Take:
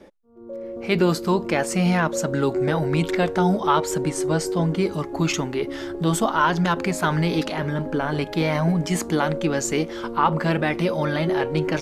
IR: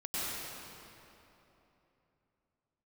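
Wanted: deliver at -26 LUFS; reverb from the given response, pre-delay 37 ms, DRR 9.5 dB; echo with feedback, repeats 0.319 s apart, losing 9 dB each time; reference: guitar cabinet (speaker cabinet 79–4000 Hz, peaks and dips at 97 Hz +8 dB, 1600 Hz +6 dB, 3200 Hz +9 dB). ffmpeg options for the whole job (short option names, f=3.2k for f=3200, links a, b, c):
-filter_complex "[0:a]aecho=1:1:319|638|957|1276:0.355|0.124|0.0435|0.0152,asplit=2[a][b];[1:a]atrim=start_sample=2205,adelay=37[c];[b][c]afir=irnorm=-1:irlink=0,volume=-15.5dB[d];[a][d]amix=inputs=2:normalize=0,highpass=79,equalizer=f=97:t=q:w=4:g=8,equalizer=f=1.6k:t=q:w=4:g=6,equalizer=f=3.2k:t=q:w=4:g=9,lowpass=f=4k:w=0.5412,lowpass=f=4k:w=1.3066,volume=-5dB"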